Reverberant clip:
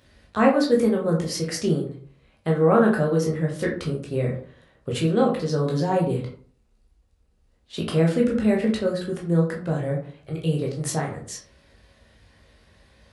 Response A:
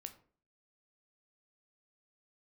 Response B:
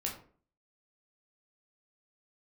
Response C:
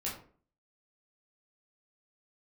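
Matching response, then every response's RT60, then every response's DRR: B; 0.45, 0.45, 0.45 s; 7.0, -2.0, -6.5 dB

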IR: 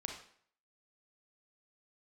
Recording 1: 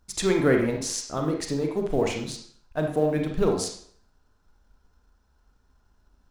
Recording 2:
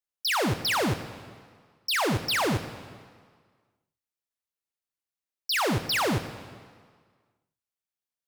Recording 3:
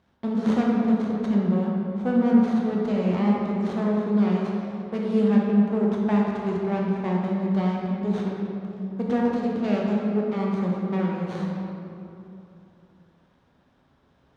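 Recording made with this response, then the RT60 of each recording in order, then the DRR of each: 1; 0.60, 1.8, 3.0 s; 2.0, 9.0, -3.0 dB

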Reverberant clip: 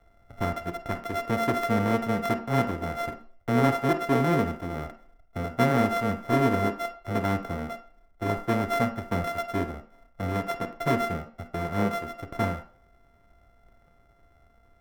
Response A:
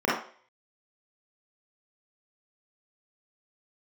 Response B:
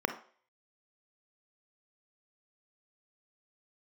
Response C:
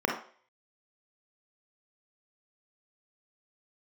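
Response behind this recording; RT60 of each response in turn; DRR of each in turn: B; 0.45, 0.45, 0.45 s; -8.0, 8.0, 0.5 dB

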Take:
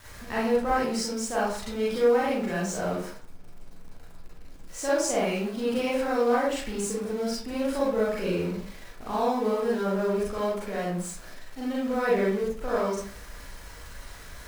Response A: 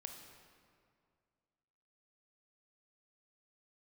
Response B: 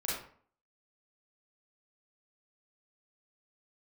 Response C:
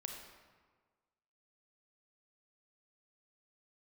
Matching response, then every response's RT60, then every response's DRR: B; 2.2, 0.50, 1.5 s; 3.5, -7.0, 2.0 dB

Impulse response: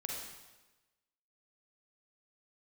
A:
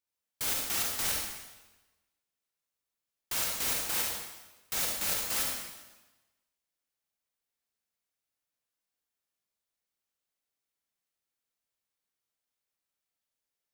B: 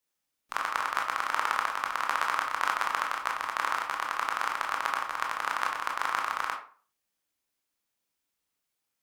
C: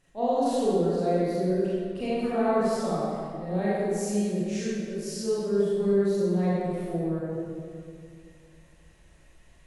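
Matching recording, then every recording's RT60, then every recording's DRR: A; 1.1, 0.40, 2.2 s; -1.5, 1.0, -10.0 dB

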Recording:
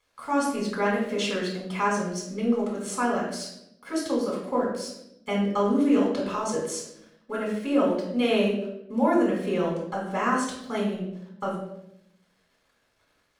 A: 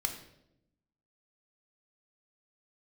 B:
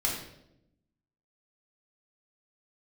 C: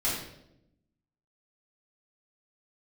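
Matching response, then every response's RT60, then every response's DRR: B; 0.80, 0.80, 0.80 s; 4.0, -3.5, -9.0 dB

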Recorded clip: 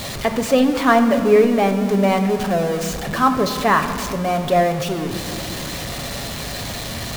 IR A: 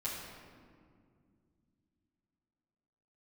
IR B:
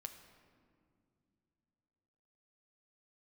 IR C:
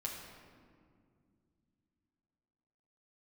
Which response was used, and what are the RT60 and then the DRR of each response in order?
B; 2.2 s, not exponential, 2.2 s; -9.5, 5.5, -3.0 dB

